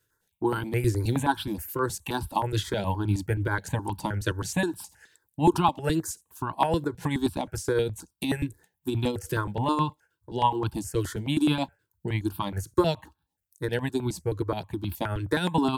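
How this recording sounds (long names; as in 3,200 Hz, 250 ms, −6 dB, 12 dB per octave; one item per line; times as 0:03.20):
tremolo triangle 9.4 Hz, depth 55%
notches that jump at a steady rate 9.5 Hz 220–1,900 Hz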